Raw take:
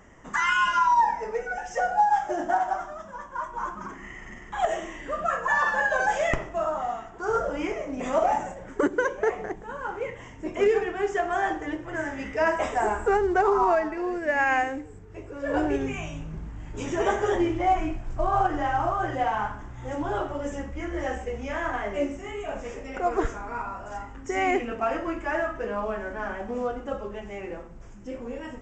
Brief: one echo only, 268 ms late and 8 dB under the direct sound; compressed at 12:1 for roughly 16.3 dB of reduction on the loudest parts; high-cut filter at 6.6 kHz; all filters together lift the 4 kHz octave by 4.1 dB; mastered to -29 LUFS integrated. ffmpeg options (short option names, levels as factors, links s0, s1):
-af "lowpass=6600,equalizer=f=4000:t=o:g=7,acompressor=threshold=0.02:ratio=12,aecho=1:1:268:0.398,volume=2.82"